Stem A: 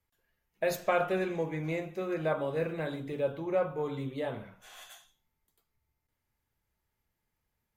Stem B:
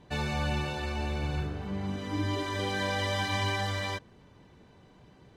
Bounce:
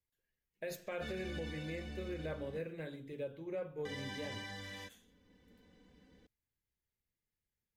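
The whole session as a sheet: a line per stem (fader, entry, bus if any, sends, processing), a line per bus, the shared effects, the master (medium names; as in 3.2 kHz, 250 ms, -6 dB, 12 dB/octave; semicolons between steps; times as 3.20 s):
-3.5 dB, 0.00 s, no send, upward expansion 1.5:1, over -38 dBFS
-8.5 dB, 0.90 s, muted 2.59–3.85 s, no send, comb 4 ms, depth 81%; auto duck -6 dB, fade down 1.95 s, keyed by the first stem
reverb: none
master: high-order bell 940 Hz -8.5 dB 1.3 oct; peak limiter -32.5 dBFS, peak gain reduction 9.5 dB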